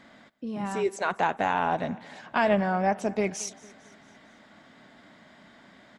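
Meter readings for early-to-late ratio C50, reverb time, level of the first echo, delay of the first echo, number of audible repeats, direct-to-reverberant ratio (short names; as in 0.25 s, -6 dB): none, none, -21.5 dB, 0.225 s, 3, none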